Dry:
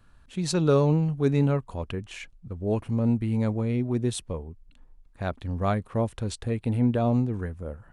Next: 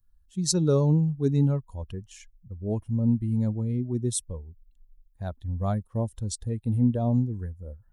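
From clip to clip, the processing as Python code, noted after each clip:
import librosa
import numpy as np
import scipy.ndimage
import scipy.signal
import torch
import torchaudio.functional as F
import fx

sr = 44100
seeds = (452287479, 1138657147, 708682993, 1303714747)

y = fx.bin_expand(x, sr, power=1.5)
y = fx.curve_eq(y, sr, hz=(180.0, 1000.0, 2400.0, 5400.0), db=(0, -7, -16, 6))
y = y * 10.0 ** (2.5 / 20.0)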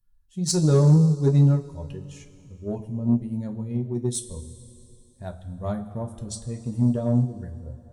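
y = fx.rev_double_slope(x, sr, seeds[0], early_s=0.2, late_s=2.8, knee_db=-18, drr_db=1.0)
y = fx.cheby_harmonics(y, sr, harmonics=(7,), levels_db=(-29,), full_scale_db=-7.0)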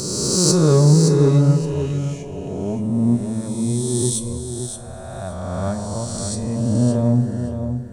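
y = fx.spec_swells(x, sr, rise_s=2.26)
y = fx.echo_feedback(y, sr, ms=569, feedback_pct=18, wet_db=-8.0)
y = y * 10.0 ** (2.5 / 20.0)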